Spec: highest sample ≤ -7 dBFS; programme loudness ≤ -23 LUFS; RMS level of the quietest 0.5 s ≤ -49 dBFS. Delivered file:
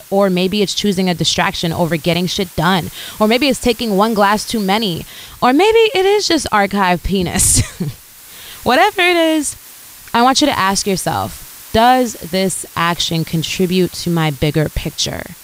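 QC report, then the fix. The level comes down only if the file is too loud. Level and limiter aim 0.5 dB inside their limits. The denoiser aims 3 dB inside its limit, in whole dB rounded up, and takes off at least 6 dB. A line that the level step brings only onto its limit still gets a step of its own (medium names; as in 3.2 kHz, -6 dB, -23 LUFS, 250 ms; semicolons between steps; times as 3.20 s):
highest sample -1.5 dBFS: fail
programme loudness -14.5 LUFS: fail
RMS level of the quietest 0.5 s -38 dBFS: fail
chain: noise reduction 6 dB, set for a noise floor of -38 dBFS; trim -9 dB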